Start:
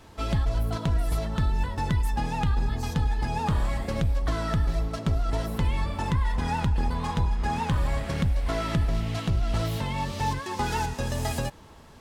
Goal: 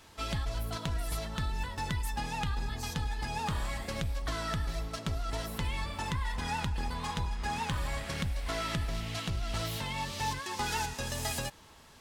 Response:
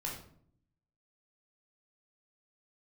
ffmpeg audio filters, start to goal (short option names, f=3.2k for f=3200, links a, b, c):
-af "tiltshelf=f=1.2k:g=-5.5,volume=-4dB"